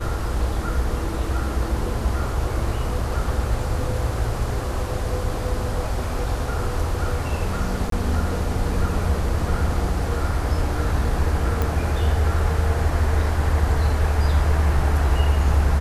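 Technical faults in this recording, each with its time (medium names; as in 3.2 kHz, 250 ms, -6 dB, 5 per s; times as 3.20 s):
7.90–7.92 s: dropout 23 ms
11.62 s: pop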